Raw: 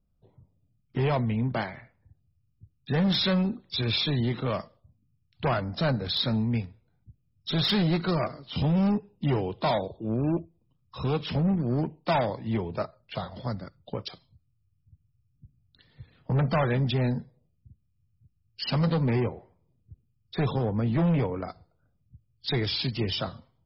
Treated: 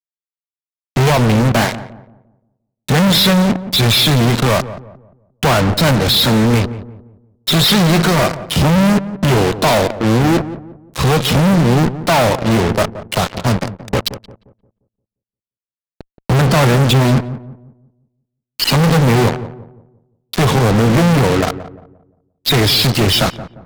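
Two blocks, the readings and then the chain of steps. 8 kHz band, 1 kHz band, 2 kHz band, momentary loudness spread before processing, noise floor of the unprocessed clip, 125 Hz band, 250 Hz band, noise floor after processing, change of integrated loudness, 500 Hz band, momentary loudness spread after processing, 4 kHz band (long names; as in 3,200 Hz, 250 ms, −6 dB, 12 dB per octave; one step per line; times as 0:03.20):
can't be measured, +15.5 dB, +17.5 dB, 12 LU, −71 dBFS, +13.5 dB, +13.0 dB, below −85 dBFS, +14.5 dB, +14.0 dB, 12 LU, +15.5 dB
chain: harmonic generator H 7 −18 dB, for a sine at −16.5 dBFS
fuzz pedal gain 51 dB, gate −50 dBFS
feedback echo with a low-pass in the loop 175 ms, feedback 37%, low-pass 1,000 Hz, level −12.5 dB
level +3 dB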